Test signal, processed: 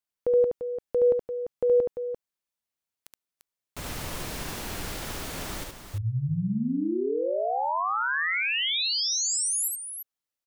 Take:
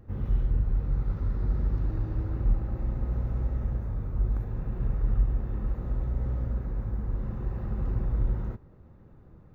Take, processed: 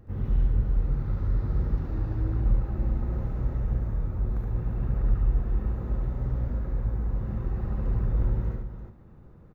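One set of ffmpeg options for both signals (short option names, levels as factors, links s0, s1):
-af "aecho=1:1:72|344:0.668|0.376"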